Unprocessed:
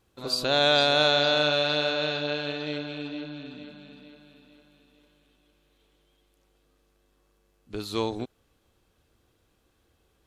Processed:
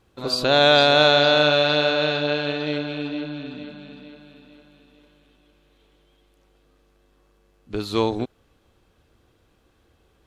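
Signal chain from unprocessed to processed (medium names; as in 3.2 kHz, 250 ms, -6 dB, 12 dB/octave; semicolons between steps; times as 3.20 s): treble shelf 5.3 kHz -8.5 dB; trim +7 dB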